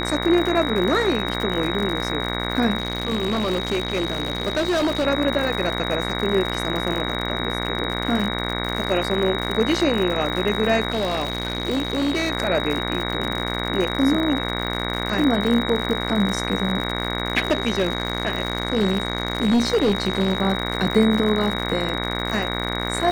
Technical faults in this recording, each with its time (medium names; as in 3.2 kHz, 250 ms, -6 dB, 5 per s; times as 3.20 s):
buzz 60 Hz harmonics 38 -27 dBFS
crackle 89 per s -25 dBFS
whine 3.8 kHz -29 dBFS
2.78–5.07 s: clipped -17.5 dBFS
10.90–12.31 s: clipped -18 dBFS
17.47–20.38 s: clipped -14 dBFS